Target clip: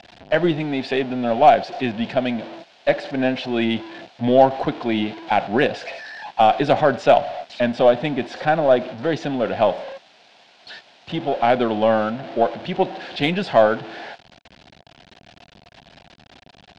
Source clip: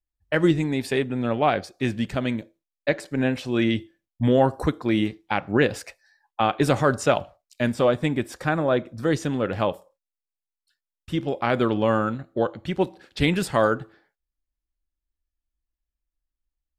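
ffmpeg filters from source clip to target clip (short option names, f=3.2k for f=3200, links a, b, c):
-af "aeval=exprs='val(0)+0.5*0.0282*sgn(val(0))':c=same,highpass=220,equalizer=f=320:t=q:w=4:g=-5,equalizer=f=460:t=q:w=4:g=-4,equalizer=f=700:t=q:w=4:g=9,equalizer=f=1.2k:t=q:w=4:g=-9,equalizer=f=2k:t=q:w=4:g=-4,lowpass=f=4.1k:w=0.5412,lowpass=f=4.1k:w=1.3066,aeval=exprs='0.562*(cos(1*acos(clip(val(0)/0.562,-1,1)))-cos(1*PI/2))+0.01*(cos(8*acos(clip(val(0)/0.562,-1,1)))-cos(8*PI/2))':c=same,volume=4dB"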